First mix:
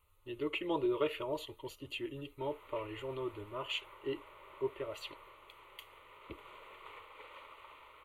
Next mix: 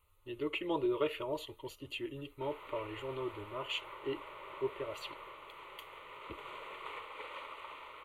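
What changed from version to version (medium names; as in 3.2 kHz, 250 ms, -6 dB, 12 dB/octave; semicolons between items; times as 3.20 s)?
background +7.0 dB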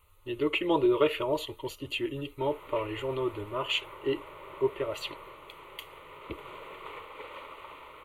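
speech +8.5 dB; background: add bass shelf 430 Hz +10.5 dB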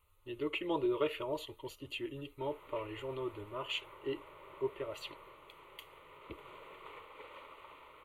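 speech -8.5 dB; background -8.0 dB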